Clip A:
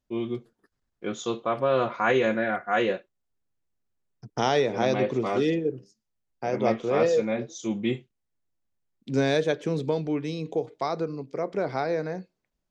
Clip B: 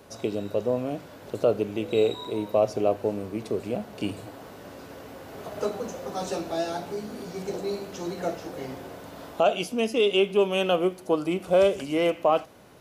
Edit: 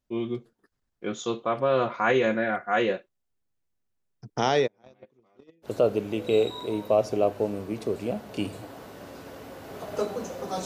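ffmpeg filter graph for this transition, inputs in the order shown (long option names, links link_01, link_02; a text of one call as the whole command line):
ffmpeg -i cue0.wav -i cue1.wav -filter_complex "[0:a]asplit=3[link_01][link_02][link_03];[link_01]afade=type=out:start_time=4.66:duration=0.02[link_04];[link_02]agate=range=-38dB:threshold=-19dB:ratio=16:release=100:detection=peak,afade=type=in:start_time=4.66:duration=0.02,afade=type=out:start_time=5.7:duration=0.02[link_05];[link_03]afade=type=in:start_time=5.7:duration=0.02[link_06];[link_04][link_05][link_06]amix=inputs=3:normalize=0,apad=whole_dur=10.65,atrim=end=10.65,atrim=end=5.7,asetpts=PTS-STARTPTS[link_07];[1:a]atrim=start=1.26:end=6.29,asetpts=PTS-STARTPTS[link_08];[link_07][link_08]acrossfade=duration=0.08:curve1=tri:curve2=tri" out.wav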